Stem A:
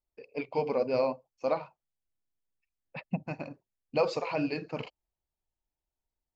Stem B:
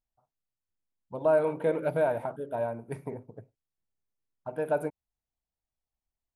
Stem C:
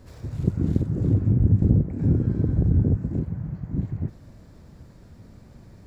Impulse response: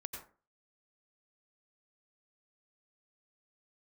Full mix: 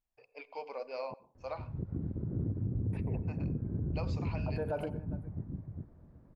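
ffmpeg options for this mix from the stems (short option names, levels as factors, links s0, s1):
-filter_complex "[0:a]highpass=630,volume=0.376,asplit=2[s0][s1];[s1]volume=0.2[s2];[1:a]highshelf=f=3700:g=-10.5,volume=0.794,asplit=3[s3][s4][s5];[s3]atrim=end=1.14,asetpts=PTS-STARTPTS,afade=t=out:st=1.136:d=0.004:c=hsin[s6];[s4]atrim=start=1.14:end=2.93,asetpts=PTS-STARTPTS,volume=0[s7];[s5]atrim=start=2.93,asetpts=PTS-STARTPTS,afade=t=in:d=0.004:c=hsin[s8];[s6][s7][s8]concat=n=3:v=0:a=1,asplit=3[s9][s10][s11];[s10]volume=0.376[s12];[s11]volume=0.0708[s13];[2:a]lowpass=1200,adelay=1350,volume=0.266,asplit=2[s14][s15];[s15]volume=0.668[s16];[3:a]atrim=start_sample=2205[s17];[s2][s12]amix=inputs=2:normalize=0[s18];[s18][s17]afir=irnorm=-1:irlink=0[s19];[s13][s16]amix=inputs=2:normalize=0,aecho=0:1:404:1[s20];[s0][s9][s14][s19][s20]amix=inputs=5:normalize=0,alimiter=level_in=1.33:limit=0.0631:level=0:latency=1:release=93,volume=0.75"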